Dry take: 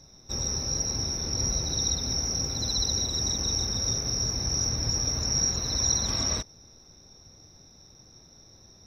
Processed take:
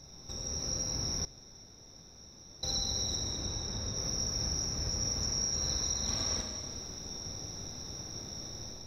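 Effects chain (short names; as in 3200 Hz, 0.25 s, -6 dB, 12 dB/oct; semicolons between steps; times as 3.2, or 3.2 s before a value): compressor 6:1, threshold -43 dBFS, peak gain reduction 20.5 dB; 3.15–3.96 high shelf 4700 Hz -8.5 dB; AGC gain up to 8.5 dB; Schroeder reverb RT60 1.9 s, combs from 29 ms, DRR 1.5 dB; 1.25–2.63 room tone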